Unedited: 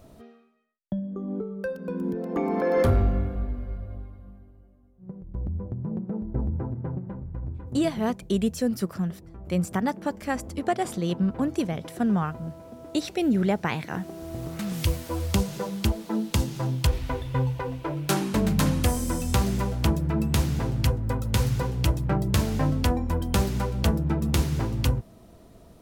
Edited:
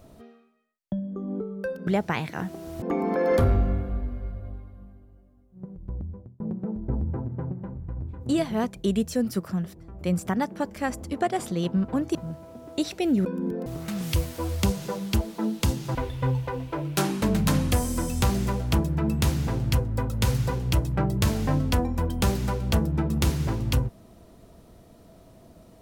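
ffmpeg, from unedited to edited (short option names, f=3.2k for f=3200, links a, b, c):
-filter_complex "[0:a]asplit=8[a][b][c][d][e][f][g][h];[a]atrim=end=1.872[i];[b]atrim=start=13.418:end=14.372[j];[c]atrim=start=2.278:end=5.86,asetpts=PTS-STARTPTS,afade=t=out:st=3.012:d=0.57[k];[d]atrim=start=5.86:end=11.612,asetpts=PTS-STARTPTS,afade=t=in:d=0.004:c=hsin[l];[e]atrim=start=12.318:end=13.422[m];[f]atrim=start=1.868:end=2.282[n];[g]atrim=start=14.368:end=16.662[o];[h]atrim=start=17.068[p];[i][j]acrossfade=d=0.004:c1=hsin:c2=hsin[q];[k][l]concat=n=2:v=0:a=1[r];[q][r]acrossfade=d=0.004:c1=hsin:c2=hsin[s];[s][m]acrossfade=d=0.004:c1=hsin:c2=hsin[t];[t][n]acrossfade=d=0.004:c1=hsin:c2=hsin[u];[u][o]acrossfade=d=0.004:c1=hsin:c2=hsin[v];[v][p]acrossfade=d=0.004:c1=hsin:c2=hsin"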